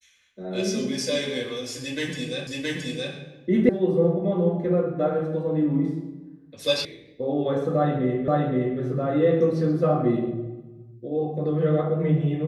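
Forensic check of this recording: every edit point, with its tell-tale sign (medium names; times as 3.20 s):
2.47 s: repeat of the last 0.67 s
3.69 s: sound stops dead
6.85 s: sound stops dead
8.28 s: repeat of the last 0.52 s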